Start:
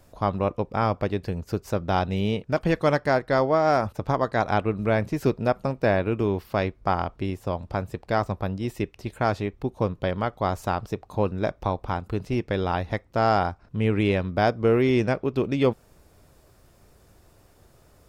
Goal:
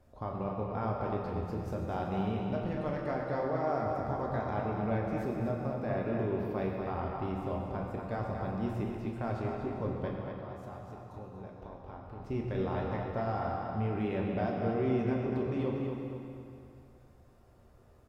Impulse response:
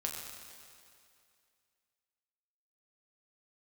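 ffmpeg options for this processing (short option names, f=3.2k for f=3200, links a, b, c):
-filter_complex "[0:a]highshelf=f=2.4k:g=-12,alimiter=limit=-19.5dB:level=0:latency=1,asettb=1/sr,asplit=3[a][b][c];[a]atrim=end=10.084[d];[b]atrim=start=10.08:end=12.2,asetpts=PTS-STARTPTS,afade=t=in:d=0.004:c=qsin,afade=t=out:st=2.116:d=0.004:c=qsin,acompressor=threshold=-38dB:ratio=6[e];[c]atrim=start=12.196[f];[d][e]acrossfade=d=0.004:c1=hsin:c2=qsin[g];[g][f]acrossfade=d=0.004:c1=qsin:c2=hsin,asplit=2[h][i];[i]adelay=239,lowpass=f=4.8k:p=1,volume=-5dB,asplit=2[j][k];[k]adelay=239,lowpass=f=4.8k:p=1,volume=0.44,asplit=2[l][m];[m]adelay=239,lowpass=f=4.8k:p=1,volume=0.44,asplit=2[n][o];[o]adelay=239,lowpass=f=4.8k:p=1,volume=0.44,asplit=2[p][q];[q]adelay=239,lowpass=f=4.8k:p=1,volume=0.44[r];[h][j][l][n][p][r]amix=inputs=6:normalize=0[s];[1:a]atrim=start_sample=2205[t];[s][t]afir=irnorm=-1:irlink=0,volume=-6.5dB"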